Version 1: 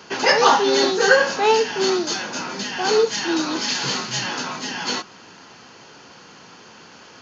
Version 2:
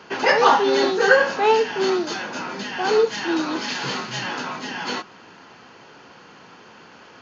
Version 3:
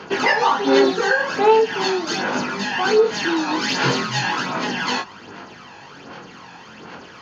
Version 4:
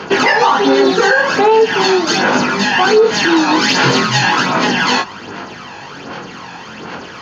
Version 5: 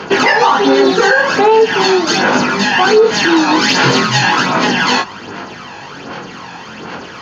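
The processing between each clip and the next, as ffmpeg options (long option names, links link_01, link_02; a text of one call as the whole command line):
ffmpeg -i in.wav -af "bass=frequency=250:gain=-2,treble=frequency=4000:gain=-11" out.wav
ffmpeg -i in.wav -af "flanger=delay=20:depth=3:speed=0.38,acompressor=threshold=-23dB:ratio=6,aphaser=in_gain=1:out_gain=1:delay=1.2:decay=0.48:speed=1.3:type=sinusoidal,volume=7.5dB" out.wav
ffmpeg -i in.wav -af "alimiter=level_in=11.5dB:limit=-1dB:release=50:level=0:latency=1,volume=-1.5dB" out.wav
ffmpeg -i in.wav -af "volume=1dB" -ar 44100 -c:a libvorbis -b:a 128k out.ogg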